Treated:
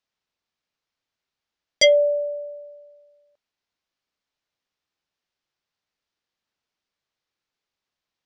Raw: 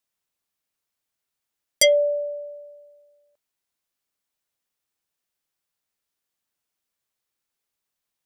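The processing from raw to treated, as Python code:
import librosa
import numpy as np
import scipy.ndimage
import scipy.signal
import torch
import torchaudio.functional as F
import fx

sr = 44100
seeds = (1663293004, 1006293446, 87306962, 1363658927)

y = scipy.signal.sosfilt(scipy.signal.butter(4, 5600.0, 'lowpass', fs=sr, output='sos'), x)
y = F.gain(torch.from_numpy(y), 2.0).numpy()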